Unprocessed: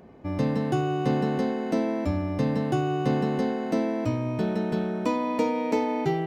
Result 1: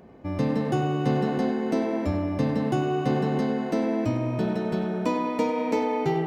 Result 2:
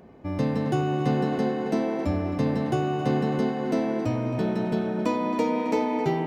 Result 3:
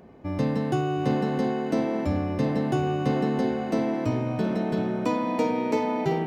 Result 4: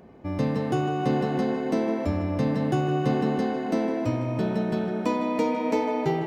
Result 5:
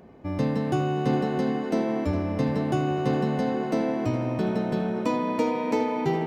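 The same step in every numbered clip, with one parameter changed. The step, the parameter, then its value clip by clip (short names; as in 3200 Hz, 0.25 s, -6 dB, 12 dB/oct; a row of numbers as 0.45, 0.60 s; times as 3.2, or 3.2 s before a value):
tape echo, time: 98, 268, 719, 155, 412 ms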